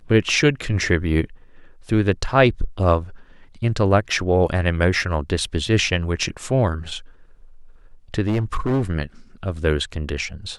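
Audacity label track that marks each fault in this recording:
8.270000	8.900000	clipped -16.5 dBFS

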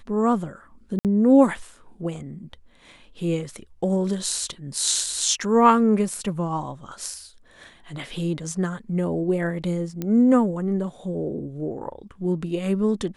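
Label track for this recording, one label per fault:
0.990000	1.050000	dropout 58 ms
10.020000	10.020000	pop -15 dBFS

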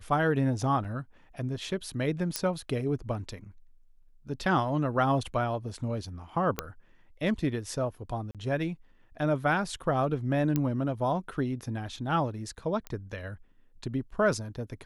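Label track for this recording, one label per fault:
0.840000	0.850000	dropout 5.9 ms
2.360000	2.360000	pop -11 dBFS
6.590000	6.590000	pop -12 dBFS
8.310000	8.350000	dropout 37 ms
10.560000	10.560000	pop -14 dBFS
12.870000	12.870000	pop -22 dBFS

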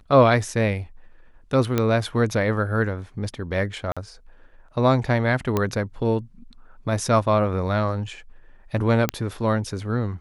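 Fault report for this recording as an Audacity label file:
1.780000	1.780000	pop -8 dBFS
3.920000	3.970000	dropout 46 ms
5.570000	5.570000	pop -9 dBFS
9.090000	9.090000	pop -6 dBFS

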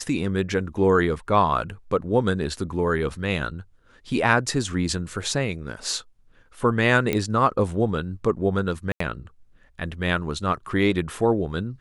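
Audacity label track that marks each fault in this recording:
7.130000	7.130000	pop -10 dBFS
8.920000	9.000000	dropout 84 ms

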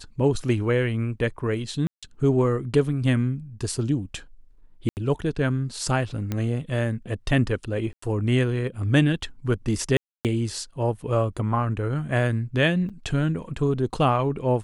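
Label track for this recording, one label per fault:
1.870000	2.030000	dropout 156 ms
4.890000	4.970000	dropout 79 ms
6.320000	6.320000	pop -14 dBFS
7.930000	8.020000	dropout 94 ms
9.970000	10.250000	dropout 278 ms
12.890000	12.900000	dropout 6.2 ms

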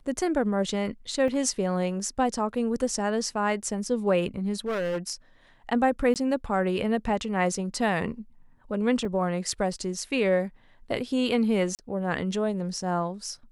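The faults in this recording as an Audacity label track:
1.280000	1.280000	dropout 2.2 ms
4.660000	4.980000	clipped -25 dBFS
6.140000	6.160000	dropout 18 ms
9.050000	9.050000	dropout 2.5 ms
11.750000	11.790000	dropout 38 ms

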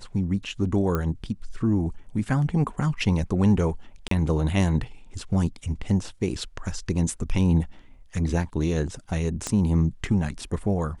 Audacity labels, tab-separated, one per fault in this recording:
0.950000	0.950000	pop -13 dBFS
4.080000	4.110000	dropout 33 ms
9.470000	9.470000	pop -14 dBFS

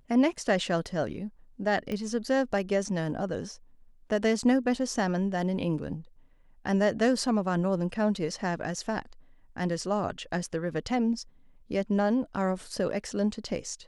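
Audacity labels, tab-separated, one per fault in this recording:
1.920000	1.920000	pop -21 dBFS

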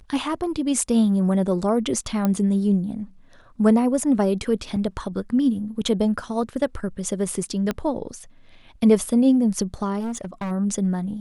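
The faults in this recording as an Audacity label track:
2.250000	2.250000	pop -10 dBFS
4.760000	4.770000	dropout 5.2 ms
7.710000	7.710000	pop -11 dBFS
9.990000	10.520000	clipped -25 dBFS

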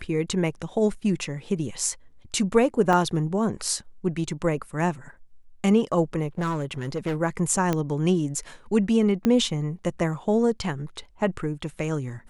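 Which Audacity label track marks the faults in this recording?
0.940000	0.940000	dropout 4.1 ms
2.930000	2.930000	dropout 2.1 ms
6.380000	7.170000	clipped -22.5 dBFS
7.730000	7.730000	pop -11 dBFS
9.250000	9.250000	pop -10 dBFS

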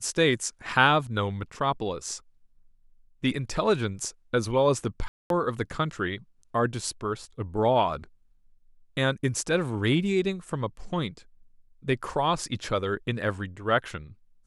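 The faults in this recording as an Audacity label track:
5.080000	5.300000	dropout 222 ms

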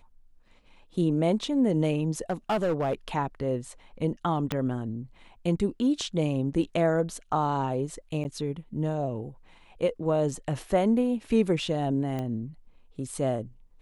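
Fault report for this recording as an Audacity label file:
2.300000	2.930000	clipped -22 dBFS
4.520000	4.520000	pop -13 dBFS
8.240000	8.250000	dropout 9.7 ms
12.190000	12.190000	pop -21 dBFS

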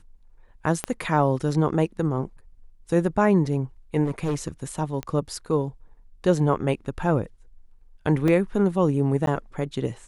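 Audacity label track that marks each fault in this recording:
0.840000	0.840000	pop -11 dBFS
4.040000	4.490000	clipped -21 dBFS
5.030000	5.030000	pop -18 dBFS
8.280000	8.280000	dropout 2.4 ms
9.260000	9.270000	dropout 12 ms

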